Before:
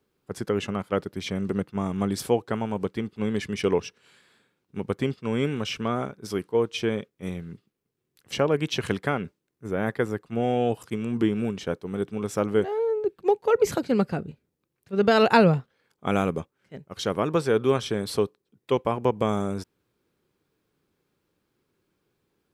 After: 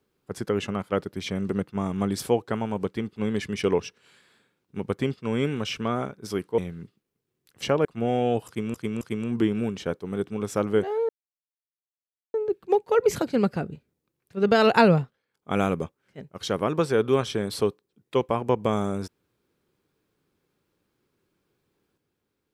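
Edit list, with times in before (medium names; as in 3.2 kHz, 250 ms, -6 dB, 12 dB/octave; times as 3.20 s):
6.58–7.28 s: delete
8.55–10.20 s: delete
10.82–11.09 s: loop, 3 plays
12.90 s: insert silence 1.25 s
15.54–16.13 s: dip -11.5 dB, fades 0.27 s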